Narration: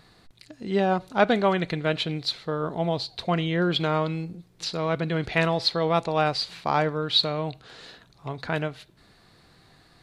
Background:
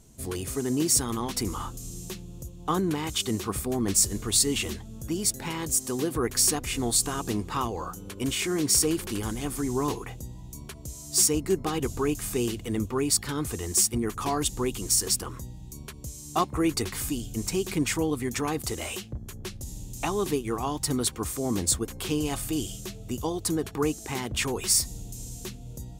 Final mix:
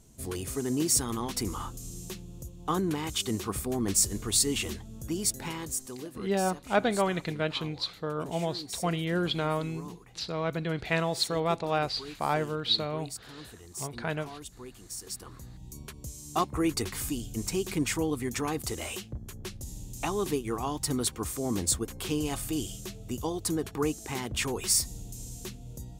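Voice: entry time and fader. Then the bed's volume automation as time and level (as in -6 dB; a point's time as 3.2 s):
5.55 s, -5.0 dB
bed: 5.45 s -2.5 dB
6.28 s -17 dB
14.94 s -17 dB
15.66 s -2.5 dB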